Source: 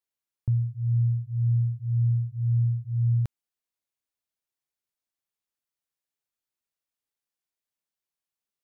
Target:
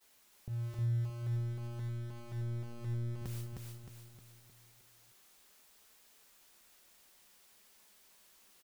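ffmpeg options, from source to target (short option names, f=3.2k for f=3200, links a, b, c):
-filter_complex "[0:a]aeval=exprs='val(0)+0.5*0.00891*sgn(val(0))':c=same,agate=range=-33dB:threshold=-39dB:ratio=3:detection=peak,equalizer=f=130:t=o:w=0.36:g=-12.5,alimiter=level_in=8dB:limit=-24dB:level=0:latency=1:release=147,volume=-8dB,flanger=delay=4.6:depth=1:regen=-48:speed=0.52:shape=sinusoidal,asettb=1/sr,asplit=3[a][b][c];[a]atrim=end=1.224[d];[b]atrim=start=1.22:end=3.22,asetpts=PTS-STARTPTS,afade=t=in:d=0.004:c=qsin,afade=t=out:st=1.996:d=0.004:c=qsin,aeval=exprs='(tanh(100*val(0)+0.35)-tanh(0.35))/100':c=same[e];[c]atrim=start=3.216[f];[d][e]acrossfade=d=0.004:c1=hsin:c2=qsin[g];[g][f]acrossfade=d=0.004:c1=qsin:c2=hsin,aecho=1:1:310|620|930|1240|1550|1860:0.708|0.333|0.156|0.0735|0.0345|0.0162,volume=4dB"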